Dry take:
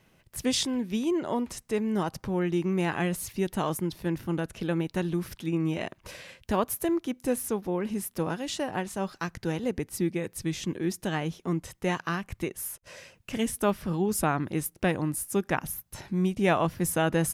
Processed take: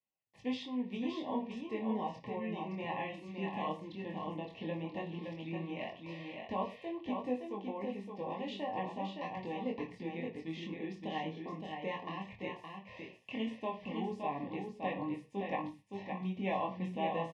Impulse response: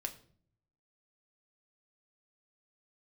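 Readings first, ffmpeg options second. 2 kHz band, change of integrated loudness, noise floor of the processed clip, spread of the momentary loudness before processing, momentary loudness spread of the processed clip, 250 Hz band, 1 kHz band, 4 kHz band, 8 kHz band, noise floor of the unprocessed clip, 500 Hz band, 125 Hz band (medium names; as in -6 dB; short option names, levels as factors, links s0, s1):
-10.5 dB, -10.0 dB, -59 dBFS, 7 LU, 6 LU, -10.0 dB, -5.5 dB, -11.0 dB, under -30 dB, -65 dBFS, -9.5 dB, -13.5 dB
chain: -filter_complex "[0:a]aemphasis=mode=production:type=75fm,agate=range=0.0355:threshold=0.00251:ratio=16:detection=peak,acompressor=threshold=0.0355:ratio=2,flanger=delay=20:depth=5.8:speed=0.13,asuperstop=centerf=1400:order=20:qfactor=2.3,highpass=140,equalizer=f=150:t=q:w=4:g=-5,equalizer=f=340:t=q:w=4:g=-5,equalizer=f=760:t=q:w=4:g=4,equalizer=f=1300:t=q:w=4:g=9,equalizer=f=2000:t=q:w=4:g=-4,lowpass=f=2900:w=0.5412,lowpass=f=2900:w=1.3066,aecho=1:1:567:0.562[s0];[1:a]atrim=start_sample=2205,atrim=end_sample=6174[s1];[s0][s1]afir=irnorm=-1:irlink=0,volume=0.841"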